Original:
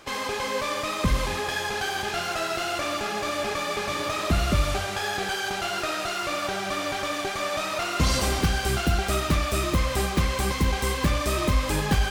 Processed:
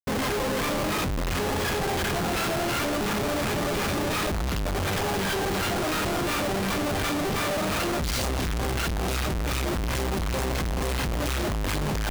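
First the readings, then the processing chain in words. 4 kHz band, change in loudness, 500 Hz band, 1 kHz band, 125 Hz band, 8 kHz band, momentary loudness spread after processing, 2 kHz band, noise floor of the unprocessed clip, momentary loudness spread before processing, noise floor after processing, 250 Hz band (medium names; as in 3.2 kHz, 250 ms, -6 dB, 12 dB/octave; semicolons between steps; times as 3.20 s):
-2.0 dB, -0.5 dB, +0.5 dB, -1.5 dB, -1.5 dB, -0.5 dB, 2 LU, -1.5 dB, -31 dBFS, 4 LU, -27 dBFS, +2.0 dB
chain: feedback echo behind a band-pass 173 ms, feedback 82%, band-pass 1.5 kHz, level -12 dB; phase shifter stages 2, 2.8 Hz, lowest notch 550–3100 Hz; Schmitt trigger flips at -31.5 dBFS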